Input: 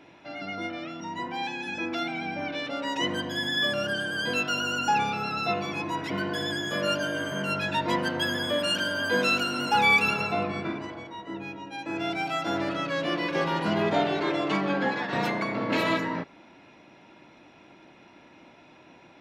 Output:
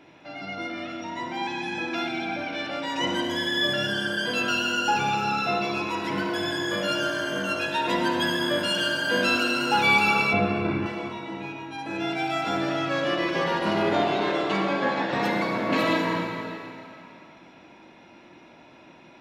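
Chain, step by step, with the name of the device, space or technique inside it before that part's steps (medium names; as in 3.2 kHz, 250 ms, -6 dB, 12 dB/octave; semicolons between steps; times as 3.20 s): stairwell (reverberation RT60 2.7 s, pre-delay 45 ms, DRR 1.5 dB); 10.33–10.86 s: tone controls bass +9 dB, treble -13 dB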